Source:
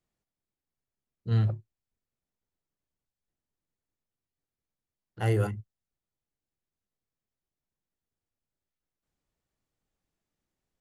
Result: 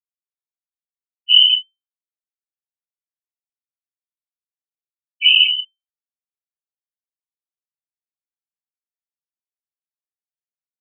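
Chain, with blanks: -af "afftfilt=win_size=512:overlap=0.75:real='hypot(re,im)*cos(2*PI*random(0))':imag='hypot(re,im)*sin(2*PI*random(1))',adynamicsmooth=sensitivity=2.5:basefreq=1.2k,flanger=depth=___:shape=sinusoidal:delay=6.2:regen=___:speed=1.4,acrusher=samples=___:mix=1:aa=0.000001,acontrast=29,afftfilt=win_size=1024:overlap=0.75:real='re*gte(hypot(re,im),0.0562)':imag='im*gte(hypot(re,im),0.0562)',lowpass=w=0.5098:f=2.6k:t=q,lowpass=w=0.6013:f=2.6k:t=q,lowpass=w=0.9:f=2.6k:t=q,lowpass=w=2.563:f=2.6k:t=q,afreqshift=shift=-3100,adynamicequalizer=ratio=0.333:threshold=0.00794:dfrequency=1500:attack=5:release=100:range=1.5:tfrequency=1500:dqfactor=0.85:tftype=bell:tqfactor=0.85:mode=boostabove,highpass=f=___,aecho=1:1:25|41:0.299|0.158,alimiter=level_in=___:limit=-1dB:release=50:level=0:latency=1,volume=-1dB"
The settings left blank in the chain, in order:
9.5, 8, 15, 200, 19.5dB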